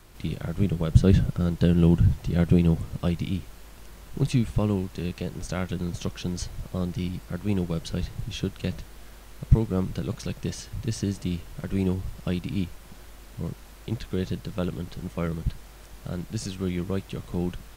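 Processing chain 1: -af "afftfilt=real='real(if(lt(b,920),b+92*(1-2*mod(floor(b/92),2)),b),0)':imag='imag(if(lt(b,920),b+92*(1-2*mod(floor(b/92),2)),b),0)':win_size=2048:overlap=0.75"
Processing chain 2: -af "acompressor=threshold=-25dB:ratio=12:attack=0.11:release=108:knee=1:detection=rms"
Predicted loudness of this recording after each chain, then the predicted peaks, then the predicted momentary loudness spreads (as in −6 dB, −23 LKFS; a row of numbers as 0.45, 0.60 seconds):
−23.5, −35.5 LKFS; −4.0, −23.5 dBFS; 17, 9 LU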